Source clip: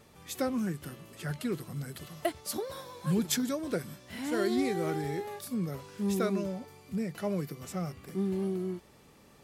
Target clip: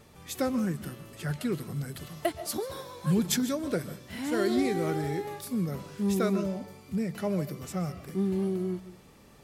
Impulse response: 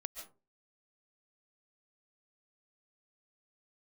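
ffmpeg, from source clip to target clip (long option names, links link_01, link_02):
-filter_complex "[0:a]asplit=2[link_01][link_02];[1:a]atrim=start_sample=2205,lowshelf=frequency=170:gain=10[link_03];[link_02][link_03]afir=irnorm=-1:irlink=0,volume=-3dB[link_04];[link_01][link_04]amix=inputs=2:normalize=0,volume=-1.5dB"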